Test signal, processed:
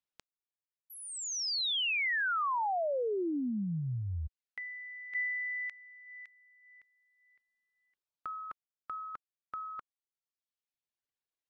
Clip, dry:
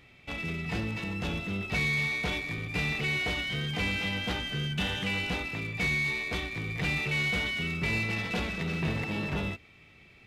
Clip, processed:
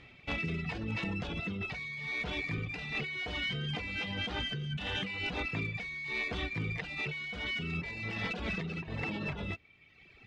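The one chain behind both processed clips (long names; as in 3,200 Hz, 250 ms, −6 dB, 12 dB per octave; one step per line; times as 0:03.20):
low-pass filter 5,100 Hz 12 dB per octave
compressor whose output falls as the input rises −34 dBFS, ratio −1
reverb reduction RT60 1.3 s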